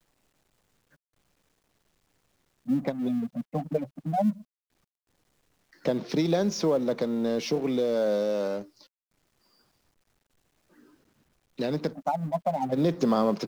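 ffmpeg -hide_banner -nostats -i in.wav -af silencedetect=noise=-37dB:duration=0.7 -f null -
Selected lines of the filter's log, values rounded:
silence_start: 0.00
silence_end: 2.68 | silence_duration: 2.68
silence_start: 4.33
silence_end: 5.85 | silence_duration: 1.53
silence_start: 8.62
silence_end: 11.59 | silence_duration: 2.97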